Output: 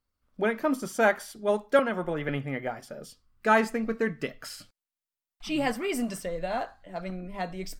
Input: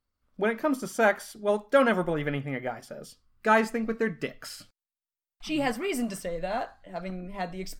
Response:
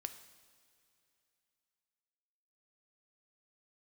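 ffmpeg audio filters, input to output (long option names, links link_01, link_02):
-filter_complex "[0:a]asettb=1/sr,asplit=3[link_01][link_02][link_03];[link_01]atrim=end=1.794[link_04];[link_02]atrim=start=1.79:end=2.29,asetpts=PTS-STARTPTS,afade=type=in:duration=0.004:curve=qsin,afade=type=out:start_time=0.496:duration=0.004:curve=qsin,acrossover=split=360|3700[link_05][link_06][link_07];[link_05]acompressor=threshold=-33dB:ratio=4[link_08];[link_06]acompressor=threshold=-28dB:ratio=4[link_09];[link_07]acompressor=threshold=-60dB:ratio=4[link_10];[link_08][link_09][link_10]amix=inputs=3:normalize=0[link_11];[link_03]atrim=start=2.286[link_12];[link_04][link_11]acrossfade=duration=0.004:curve1=hsin:curve2=qsin[link_13];[link_13][link_12]acrossfade=duration=0.004:curve1=qsin:curve2=hsin"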